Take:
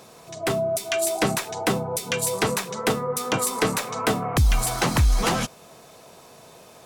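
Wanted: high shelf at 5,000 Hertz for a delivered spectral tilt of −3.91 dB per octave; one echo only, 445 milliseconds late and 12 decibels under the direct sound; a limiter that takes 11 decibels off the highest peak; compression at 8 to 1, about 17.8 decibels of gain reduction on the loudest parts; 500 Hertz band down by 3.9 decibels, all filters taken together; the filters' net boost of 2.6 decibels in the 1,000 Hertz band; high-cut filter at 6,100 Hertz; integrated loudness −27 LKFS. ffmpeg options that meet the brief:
ffmpeg -i in.wav -af "lowpass=6100,equalizer=frequency=500:width_type=o:gain=-7.5,equalizer=frequency=1000:width_type=o:gain=5.5,highshelf=frequency=5000:gain=3.5,acompressor=threshold=-34dB:ratio=8,alimiter=level_in=6.5dB:limit=-24dB:level=0:latency=1,volume=-6.5dB,aecho=1:1:445:0.251,volume=13dB" out.wav

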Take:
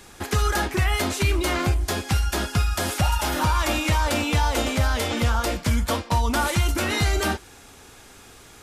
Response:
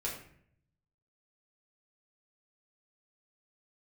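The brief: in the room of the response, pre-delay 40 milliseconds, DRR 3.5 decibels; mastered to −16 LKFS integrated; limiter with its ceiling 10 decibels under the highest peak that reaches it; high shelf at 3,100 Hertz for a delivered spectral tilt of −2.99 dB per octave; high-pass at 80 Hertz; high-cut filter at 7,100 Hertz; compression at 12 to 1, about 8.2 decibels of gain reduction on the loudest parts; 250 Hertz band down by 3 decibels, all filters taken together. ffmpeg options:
-filter_complex "[0:a]highpass=80,lowpass=7100,equalizer=frequency=250:width_type=o:gain=-4,highshelf=frequency=3100:gain=8.5,acompressor=threshold=-26dB:ratio=12,alimiter=limit=-22.5dB:level=0:latency=1,asplit=2[link_01][link_02];[1:a]atrim=start_sample=2205,adelay=40[link_03];[link_02][link_03]afir=irnorm=-1:irlink=0,volume=-6dB[link_04];[link_01][link_04]amix=inputs=2:normalize=0,volume=14.5dB"

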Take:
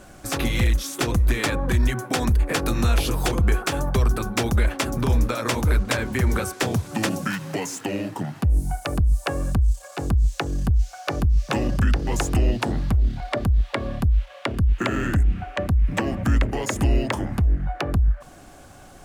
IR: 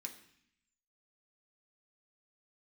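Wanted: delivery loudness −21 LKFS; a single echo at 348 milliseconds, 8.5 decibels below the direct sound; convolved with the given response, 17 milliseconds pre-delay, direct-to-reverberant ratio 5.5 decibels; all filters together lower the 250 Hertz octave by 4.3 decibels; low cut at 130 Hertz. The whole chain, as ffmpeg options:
-filter_complex "[0:a]highpass=130,equalizer=frequency=250:width_type=o:gain=-5,aecho=1:1:348:0.376,asplit=2[link_01][link_02];[1:a]atrim=start_sample=2205,adelay=17[link_03];[link_02][link_03]afir=irnorm=-1:irlink=0,volume=-1.5dB[link_04];[link_01][link_04]amix=inputs=2:normalize=0,volume=6dB"

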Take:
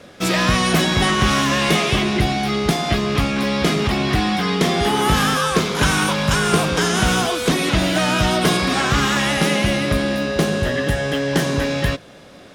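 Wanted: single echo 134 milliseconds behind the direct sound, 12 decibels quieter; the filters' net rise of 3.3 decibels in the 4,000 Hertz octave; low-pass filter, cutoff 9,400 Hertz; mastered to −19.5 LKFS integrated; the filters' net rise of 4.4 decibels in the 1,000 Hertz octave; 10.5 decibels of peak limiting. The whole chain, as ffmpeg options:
ffmpeg -i in.wav -af "lowpass=9400,equalizer=frequency=1000:width_type=o:gain=5.5,equalizer=frequency=4000:width_type=o:gain=4,alimiter=limit=-13dB:level=0:latency=1,aecho=1:1:134:0.251,volume=1.5dB" out.wav

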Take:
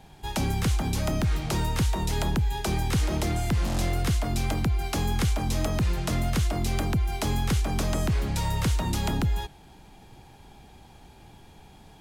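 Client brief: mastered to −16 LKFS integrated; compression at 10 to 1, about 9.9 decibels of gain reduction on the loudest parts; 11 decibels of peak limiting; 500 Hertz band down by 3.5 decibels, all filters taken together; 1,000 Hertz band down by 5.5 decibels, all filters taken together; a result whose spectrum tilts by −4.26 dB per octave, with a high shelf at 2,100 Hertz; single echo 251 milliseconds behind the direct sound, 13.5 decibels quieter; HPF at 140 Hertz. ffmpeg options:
ffmpeg -i in.wav -af "highpass=140,equalizer=frequency=500:width_type=o:gain=-3,equalizer=frequency=1000:width_type=o:gain=-7,highshelf=frequency=2100:gain=3.5,acompressor=threshold=-34dB:ratio=10,alimiter=level_in=5dB:limit=-24dB:level=0:latency=1,volume=-5dB,aecho=1:1:251:0.211,volume=23dB" out.wav

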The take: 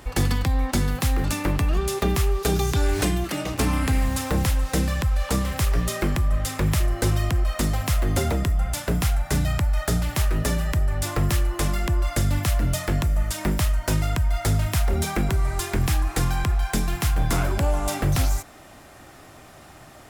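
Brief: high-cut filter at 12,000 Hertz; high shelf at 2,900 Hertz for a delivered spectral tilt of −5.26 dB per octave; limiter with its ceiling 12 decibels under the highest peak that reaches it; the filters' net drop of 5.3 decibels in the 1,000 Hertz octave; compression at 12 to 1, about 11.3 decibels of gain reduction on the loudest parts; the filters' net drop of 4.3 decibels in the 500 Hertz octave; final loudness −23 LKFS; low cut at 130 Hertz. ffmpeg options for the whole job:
ffmpeg -i in.wav -af "highpass=130,lowpass=12000,equalizer=frequency=500:width_type=o:gain=-4.5,equalizer=frequency=1000:width_type=o:gain=-4.5,highshelf=frequency=2900:gain=-7.5,acompressor=threshold=-34dB:ratio=12,volume=19dB,alimiter=limit=-13.5dB:level=0:latency=1" out.wav

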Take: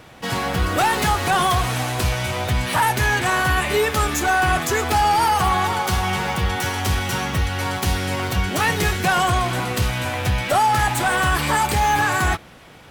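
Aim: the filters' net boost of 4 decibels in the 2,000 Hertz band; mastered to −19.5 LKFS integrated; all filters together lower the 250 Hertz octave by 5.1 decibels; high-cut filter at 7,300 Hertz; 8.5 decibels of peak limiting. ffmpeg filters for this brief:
ffmpeg -i in.wav -af "lowpass=7300,equalizer=frequency=250:width_type=o:gain=-8,equalizer=frequency=2000:width_type=o:gain=5.5,volume=3.5dB,alimiter=limit=-12dB:level=0:latency=1" out.wav

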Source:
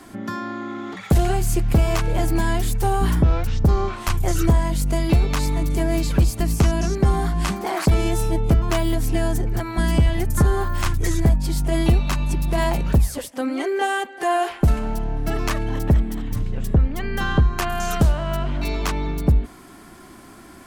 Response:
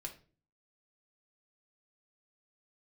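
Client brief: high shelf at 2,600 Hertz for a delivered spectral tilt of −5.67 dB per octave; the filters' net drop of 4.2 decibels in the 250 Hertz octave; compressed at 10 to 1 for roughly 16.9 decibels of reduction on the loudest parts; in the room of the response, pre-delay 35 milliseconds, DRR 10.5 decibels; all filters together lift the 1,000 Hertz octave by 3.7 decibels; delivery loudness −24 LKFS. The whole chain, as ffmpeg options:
-filter_complex "[0:a]equalizer=frequency=250:width_type=o:gain=-7,equalizer=frequency=1000:width_type=o:gain=6,highshelf=frequency=2600:gain=-3,acompressor=threshold=-30dB:ratio=10,asplit=2[link_01][link_02];[1:a]atrim=start_sample=2205,adelay=35[link_03];[link_02][link_03]afir=irnorm=-1:irlink=0,volume=-7.5dB[link_04];[link_01][link_04]amix=inputs=2:normalize=0,volume=11dB"

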